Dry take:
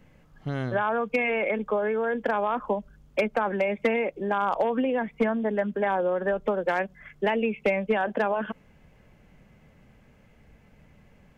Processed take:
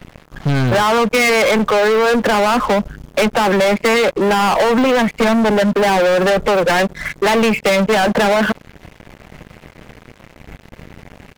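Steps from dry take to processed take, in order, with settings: waveshaping leveller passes 5; trim +4.5 dB

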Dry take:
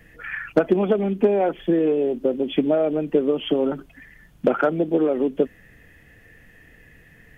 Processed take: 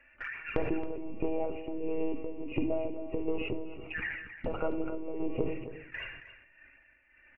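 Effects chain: zero-crossing glitches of -20 dBFS; FFT band-pass 120–2900 Hz; gate with hold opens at -32 dBFS; monotone LPC vocoder at 8 kHz 160 Hz; touch-sensitive flanger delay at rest 3.6 ms, full sweep at -26.5 dBFS; compression 6:1, threshold -33 dBFS, peak gain reduction 19.5 dB; reverberation RT60 0.90 s, pre-delay 7 ms, DRR 10.5 dB; tremolo 1.5 Hz, depth 70%; peaking EQ 160 Hz -14.5 dB 0.21 oct; delay 272 ms -12.5 dB; decay stretcher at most 61 dB/s; trim +5.5 dB

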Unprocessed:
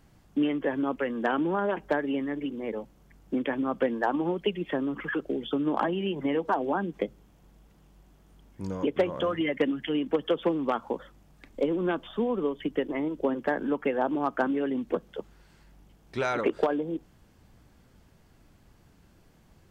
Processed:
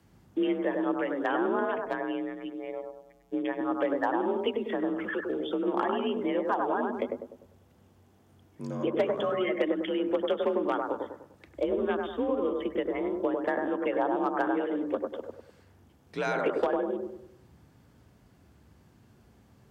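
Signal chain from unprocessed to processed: 1.78–3.61 s: robot voice 130 Hz; frequency shift +45 Hz; bucket-brigade echo 99 ms, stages 1024, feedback 42%, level -3 dB; trim -2.5 dB

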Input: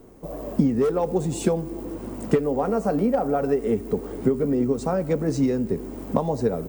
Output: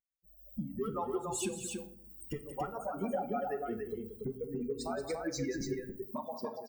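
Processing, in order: expander on every frequency bin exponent 3; high-pass 51 Hz 12 dB/octave, from 5.61 s 310 Hz; harmonic-percussive split harmonic -16 dB; compression, threshold -34 dBFS, peak gain reduction 15.5 dB; peak limiter -34 dBFS, peak gain reduction 11.5 dB; level rider gain up to 10.5 dB; loudspeakers at several distances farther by 62 m -11 dB, 98 m -4 dB; simulated room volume 840 m³, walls furnished, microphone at 0.98 m; trim -5 dB

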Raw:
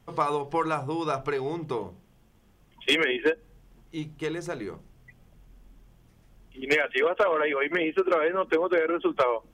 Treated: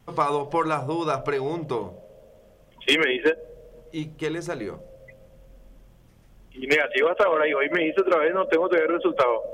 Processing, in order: wow and flutter 22 cents; on a send: Butterworth band-pass 580 Hz, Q 5.3 + reverberation RT60 3.0 s, pre-delay 57 ms, DRR 18 dB; on the sum: trim +3 dB

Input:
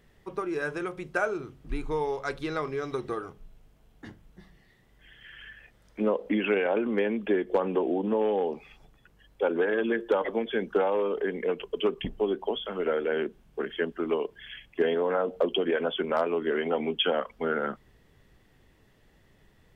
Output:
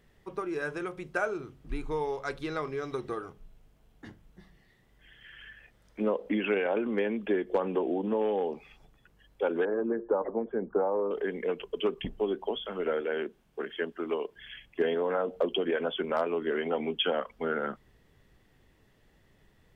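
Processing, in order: 9.65–11.11 s: low-pass 1.2 kHz 24 dB/octave; 13.01–14.36 s: bass shelf 160 Hz -10 dB; trim -2.5 dB

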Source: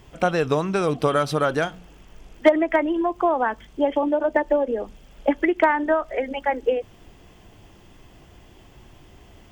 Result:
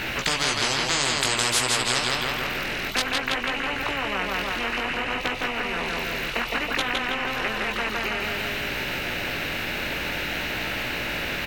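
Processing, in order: high-order bell 2.9 kHz +11.5 dB; wide varispeed 0.83×; chorus 0.56 Hz, delay 15.5 ms, depth 6.7 ms; on a send: feedback delay 162 ms, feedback 32%, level -6.5 dB; on the sum: spectrum-flattening compressor 10:1

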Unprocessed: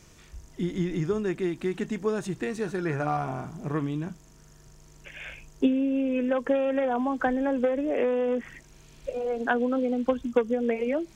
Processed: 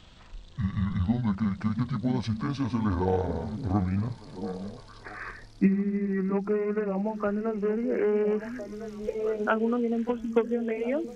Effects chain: pitch bend over the whole clip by -11 st ending unshifted; repeats whose band climbs or falls 678 ms, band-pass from 210 Hz, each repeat 1.4 oct, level -8.5 dB; gain riding within 5 dB 2 s

